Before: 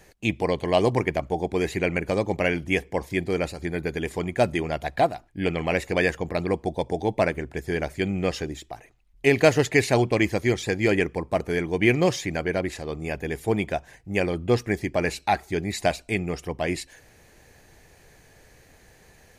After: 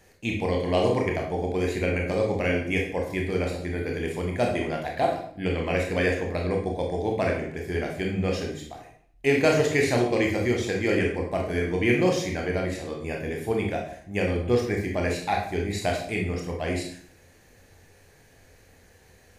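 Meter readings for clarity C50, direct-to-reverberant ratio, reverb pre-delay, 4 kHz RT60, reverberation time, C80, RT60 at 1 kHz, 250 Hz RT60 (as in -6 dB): 4.5 dB, -0.5 dB, 21 ms, 0.50 s, 0.55 s, 8.5 dB, 0.55 s, 0.65 s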